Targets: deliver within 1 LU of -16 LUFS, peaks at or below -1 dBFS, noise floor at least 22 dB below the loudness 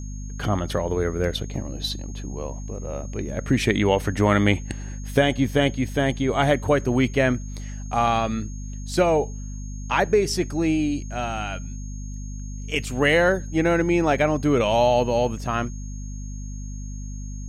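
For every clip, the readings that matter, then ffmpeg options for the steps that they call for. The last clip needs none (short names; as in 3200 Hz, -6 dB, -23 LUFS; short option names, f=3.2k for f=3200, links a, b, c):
hum 50 Hz; harmonics up to 250 Hz; hum level -30 dBFS; steady tone 6500 Hz; tone level -45 dBFS; loudness -23.0 LUFS; peak -5.0 dBFS; loudness target -16.0 LUFS
-> -af "bandreject=f=50:t=h:w=6,bandreject=f=100:t=h:w=6,bandreject=f=150:t=h:w=6,bandreject=f=200:t=h:w=6,bandreject=f=250:t=h:w=6"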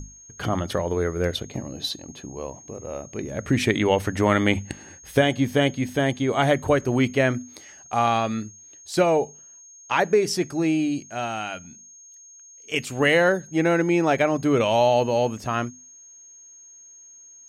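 hum none; steady tone 6500 Hz; tone level -45 dBFS
-> -af "bandreject=f=6.5k:w=30"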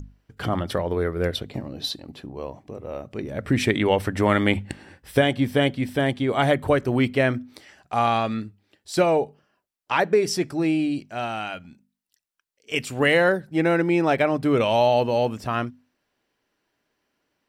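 steady tone none; loudness -23.0 LUFS; peak -5.0 dBFS; loudness target -16.0 LUFS
-> -af "volume=7dB,alimiter=limit=-1dB:level=0:latency=1"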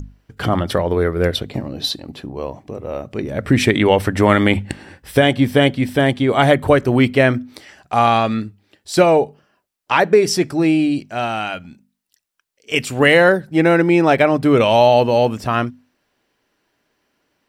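loudness -16.0 LUFS; peak -1.0 dBFS; noise floor -70 dBFS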